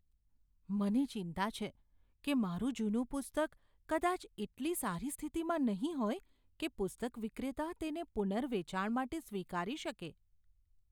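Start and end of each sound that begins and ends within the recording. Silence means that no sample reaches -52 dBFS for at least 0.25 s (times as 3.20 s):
0.69–1.70 s
2.24–3.53 s
3.89–6.20 s
6.60–10.12 s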